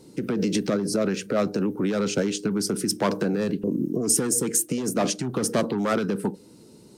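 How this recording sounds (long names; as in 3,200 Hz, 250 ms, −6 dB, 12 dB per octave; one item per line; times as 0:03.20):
background noise floor −50 dBFS
spectral slope −4.0 dB per octave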